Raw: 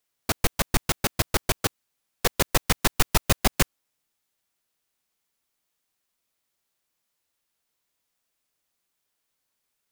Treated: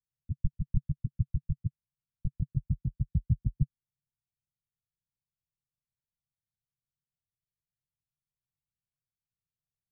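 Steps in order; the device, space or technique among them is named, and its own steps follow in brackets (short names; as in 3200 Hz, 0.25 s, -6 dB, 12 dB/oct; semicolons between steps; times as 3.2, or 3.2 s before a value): 2.49–3.62 HPF 42 Hz 24 dB/oct; the neighbour's flat through the wall (LPF 150 Hz 24 dB/oct; bell 140 Hz +7.5 dB 0.84 oct); gain -2.5 dB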